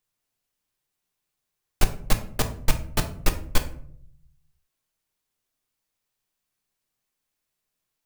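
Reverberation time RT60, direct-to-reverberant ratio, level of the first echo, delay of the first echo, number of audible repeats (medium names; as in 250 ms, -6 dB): 0.60 s, 5.5 dB, no echo, no echo, no echo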